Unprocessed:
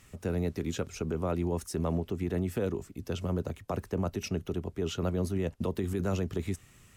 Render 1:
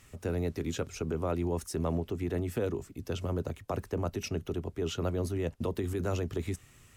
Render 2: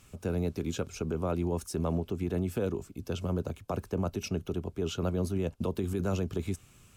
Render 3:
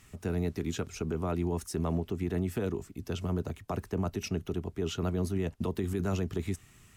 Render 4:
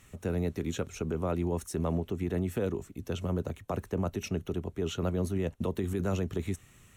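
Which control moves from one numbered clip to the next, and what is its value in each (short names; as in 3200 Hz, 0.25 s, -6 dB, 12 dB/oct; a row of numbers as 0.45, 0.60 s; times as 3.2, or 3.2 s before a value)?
notch, frequency: 190, 1900, 530, 4900 Hz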